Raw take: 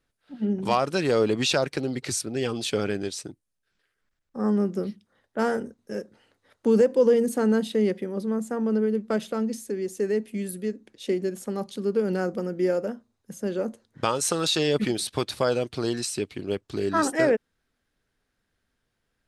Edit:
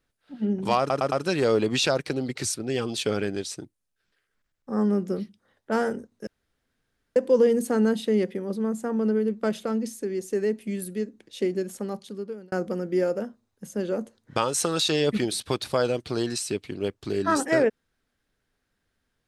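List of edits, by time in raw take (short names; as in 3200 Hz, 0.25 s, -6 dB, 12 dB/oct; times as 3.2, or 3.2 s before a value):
0.79 stutter 0.11 s, 4 plays
5.94–6.83 room tone
11.41–12.19 fade out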